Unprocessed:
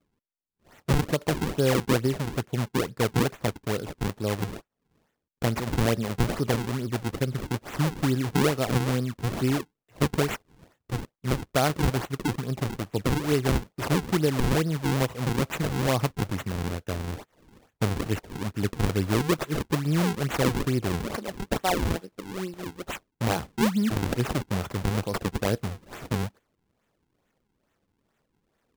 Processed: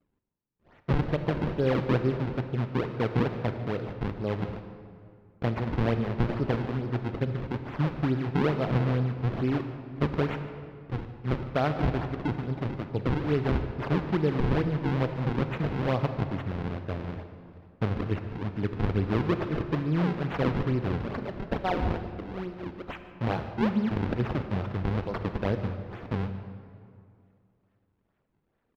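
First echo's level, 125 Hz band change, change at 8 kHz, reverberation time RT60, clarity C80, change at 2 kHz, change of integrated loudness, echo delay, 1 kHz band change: -17.5 dB, -1.0 dB, under -25 dB, 2.3 s, 9.0 dB, -4.5 dB, -2.0 dB, 149 ms, -2.5 dB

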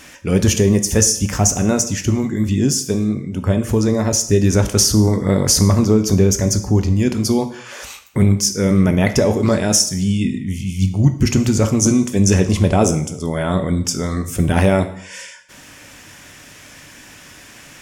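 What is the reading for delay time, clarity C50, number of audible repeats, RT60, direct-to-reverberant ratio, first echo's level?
no echo, 12.5 dB, no echo, 0.65 s, 8.5 dB, no echo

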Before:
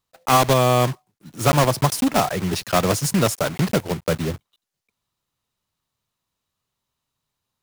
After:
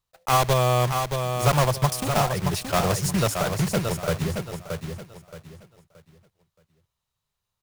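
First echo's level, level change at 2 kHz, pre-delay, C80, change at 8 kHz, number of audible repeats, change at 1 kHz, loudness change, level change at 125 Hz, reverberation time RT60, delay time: -6.0 dB, -3.0 dB, no reverb, no reverb, -3.0 dB, 3, -3.0 dB, -3.5 dB, -1.0 dB, no reverb, 624 ms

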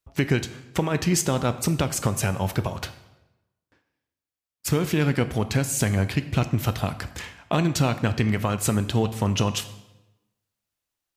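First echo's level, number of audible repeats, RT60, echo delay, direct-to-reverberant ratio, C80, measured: no echo, no echo, 1.0 s, no echo, 11.0 dB, 15.5 dB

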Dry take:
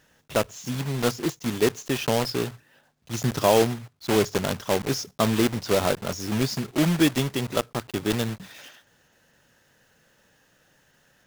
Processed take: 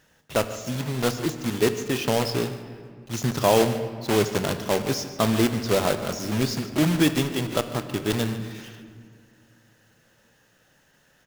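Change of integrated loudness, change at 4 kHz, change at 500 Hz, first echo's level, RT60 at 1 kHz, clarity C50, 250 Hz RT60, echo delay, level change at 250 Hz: +0.5 dB, +0.5 dB, +0.5 dB, -16.0 dB, 1.9 s, 10.0 dB, 2.9 s, 148 ms, +1.0 dB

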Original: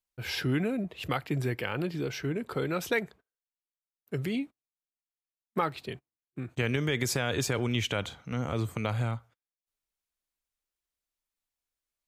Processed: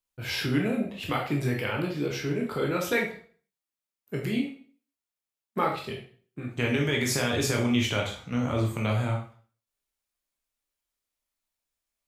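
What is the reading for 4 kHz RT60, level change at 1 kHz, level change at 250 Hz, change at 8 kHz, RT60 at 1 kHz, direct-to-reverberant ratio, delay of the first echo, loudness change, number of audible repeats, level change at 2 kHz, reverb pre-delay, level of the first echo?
0.40 s, +3.5 dB, +4.5 dB, +3.5 dB, 0.45 s, -1.0 dB, no echo, +3.5 dB, no echo, +3.5 dB, 7 ms, no echo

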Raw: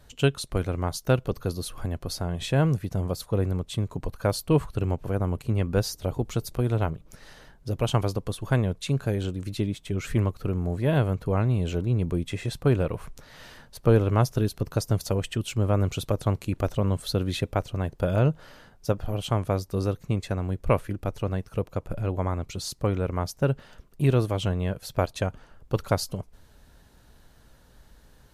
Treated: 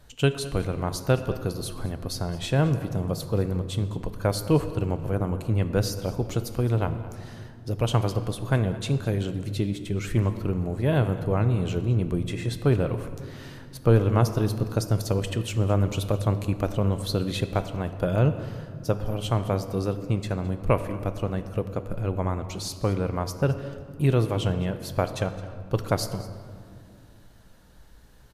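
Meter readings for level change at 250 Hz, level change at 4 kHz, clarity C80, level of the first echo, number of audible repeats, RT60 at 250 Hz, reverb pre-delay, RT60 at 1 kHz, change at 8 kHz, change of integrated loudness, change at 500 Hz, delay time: +1.0 dB, +0.5 dB, 11.5 dB, -18.5 dB, 1, 3.8 s, 6 ms, 2.1 s, +0.5 dB, +0.5 dB, +0.5 dB, 214 ms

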